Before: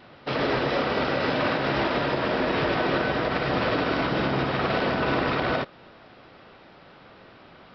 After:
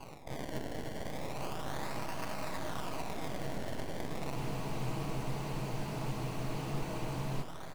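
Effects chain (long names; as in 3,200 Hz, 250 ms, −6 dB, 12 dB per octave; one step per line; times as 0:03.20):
low-pass filter 3,300 Hz 24 dB per octave
comb filter 6.3 ms, depth 36%
reversed playback
downward compressor, threshold −35 dBFS, peak gain reduction 14 dB
reversed playback
brickwall limiter −33.5 dBFS, peak gain reduction 9 dB
phaser with its sweep stopped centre 1,600 Hz, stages 6
sample-and-hold swept by an LFO 24×, swing 100% 0.34 Hz
half-wave rectification
on a send: delay that swaps between a low-pass and a high-pass 221 ms, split 890 Hz, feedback 76%, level −5 dB
on the sum: frozen spectrum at 0:04.36, 3.06 s
highs frequency-modulated by the lows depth 0.22 ms
level +9 dB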